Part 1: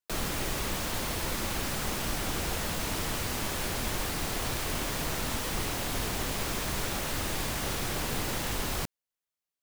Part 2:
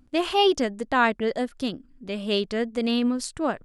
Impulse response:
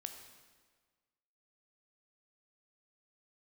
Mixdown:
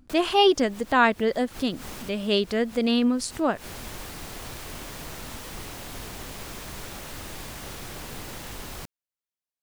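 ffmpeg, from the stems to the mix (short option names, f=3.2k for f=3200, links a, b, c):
-filter_complex "[0:a]volume=-6dB[a];[1:a]volume=1.5dB,asplit=2[b][c];[c]apad=whole_len=424492[d];[a][d]sidechaincompress=threshold=-39dB:ratio=8:attack=7.2:release=107[e];[e][b]amix=inputs=2:normalize=0"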